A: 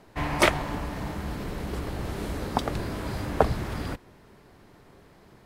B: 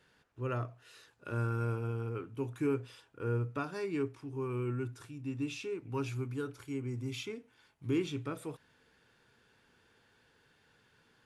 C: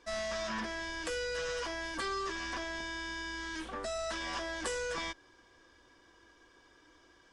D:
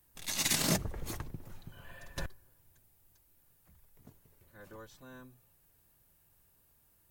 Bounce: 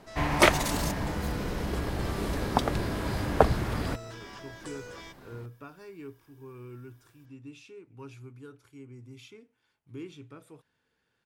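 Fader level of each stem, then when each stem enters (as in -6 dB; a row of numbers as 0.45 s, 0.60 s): +1.0 dB, -9.5 dB, -9.0 dB, -4.5 dB; 0.00 s, 2.05 s, 0.00 s, 0.15 s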